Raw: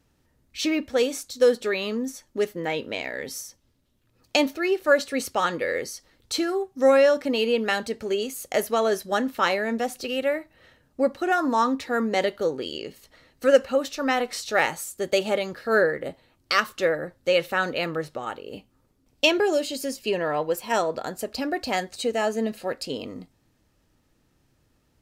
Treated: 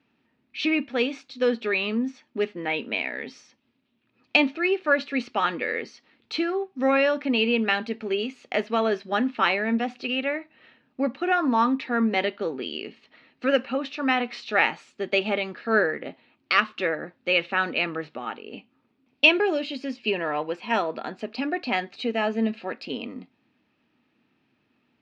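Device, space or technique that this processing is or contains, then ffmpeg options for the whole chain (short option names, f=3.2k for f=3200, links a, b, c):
kitchen radio: -af "highpass=210,equalizer=f=230:t=q:w=4:g=7,equalizer=f=530:t=q:w=4:g=-7,equalizer=f=2.5k:t=q:w=4:g=8,lowpass=f=3.9k:w=0.5412,lowpass=f=3.9k:w=1.3066"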